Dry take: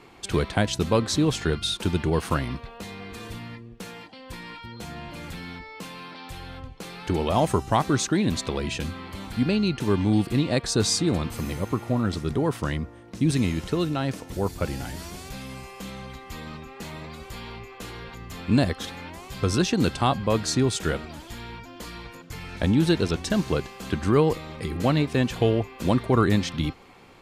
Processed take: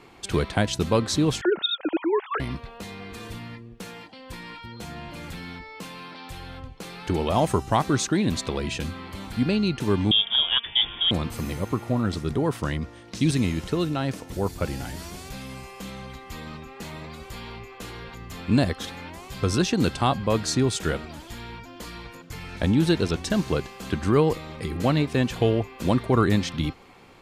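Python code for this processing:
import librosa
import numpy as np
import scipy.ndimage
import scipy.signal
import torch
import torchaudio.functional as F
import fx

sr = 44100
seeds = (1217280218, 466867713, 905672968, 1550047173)

y = fx.sine_speech(x, sr, at=(1.41, 2.4))
y = fx.freq_invert(y, sr, carrier_hz=3500, at=(10.11, 11.11))
y = fx.peak_eq(y, sr, hz=4600.0, db=11.5, octaves=2.3, at=(12.81, 13.29), fade=0.02)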